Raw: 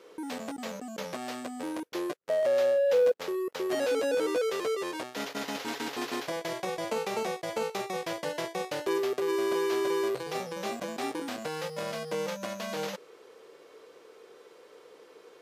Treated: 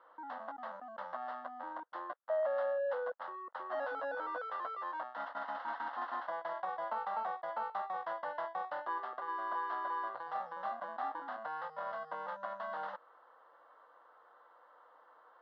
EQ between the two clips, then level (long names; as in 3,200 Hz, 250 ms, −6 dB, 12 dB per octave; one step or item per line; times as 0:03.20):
band-pass filter 780–2,200 Hz
high-frequency loss of the air 370 metres
phaser with its sweep stopped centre 1,000 Hz, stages 4
+5.0 dB